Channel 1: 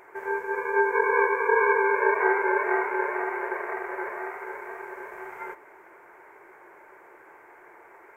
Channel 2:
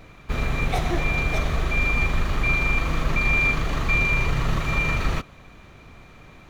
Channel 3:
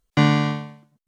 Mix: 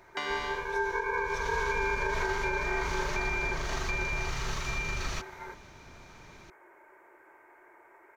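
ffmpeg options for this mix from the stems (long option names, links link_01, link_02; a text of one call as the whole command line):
ffmpeg -i stem1.wav -i stem2.wav -i stem3.wav -filter_complex "[0:a]aecho=1:1:3.2:0.33,volume=-7dB[link_01];[1:a]equalizer=frequency=5700:width=1.4:gain=12.5,acrossover=split=87|850[link_02][link_03][link_04];[link_02]acompressor=threshold=-26dB:ratio=4[link_05];[link_03]acompressor=threshold=-37dB:ratio=4[link_06];[link_04]acompressor=threshold=-28dB:ratio=4[link_07];[link_05][link_06][link_07]amix=inputs=3:normalize=0,volume=-6.5dB,afade=type=in:start_time=1.13:duration=0.5:silence=0.251189[link_08];[2:a]highpass=840,acompressor=threshold=-26dB:ratio=6,volume=-4.5dB[link_09];[link_01][link_08][link_09]amix=inputs=3:normalize=0,alimiter=limit=-19.5dB:level=0:latency=1:release=112" out.wav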